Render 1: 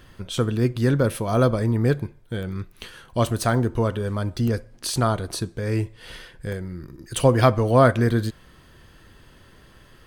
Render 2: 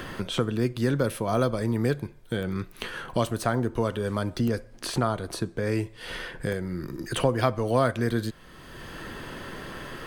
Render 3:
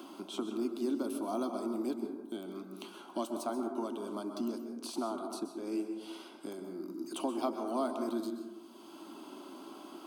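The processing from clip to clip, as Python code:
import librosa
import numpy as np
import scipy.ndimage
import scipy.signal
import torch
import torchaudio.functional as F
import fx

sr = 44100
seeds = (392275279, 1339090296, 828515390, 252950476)

y1 = fx.peak_eq(x, sr, hz=71.0, db=-6.5, octaves=1.9)
y1 = fx.band_squash(y1, sr, depth_pct=70)
y1 = y1 * 10.0 ** (-3.0 / 20.0)
y2 = fx.ladder_highpass(y1, sr, hz=250.0, resonance_pct=45)
y2 = fx.fixed_phaser(y2, sr, hz=480.0, stages=6)
y2 = fx.rev_plate(y2, sr, seeds[0], rt60_s=1.1, hf_ratio=0.3, predelay_ms=115, drr_db=5.5)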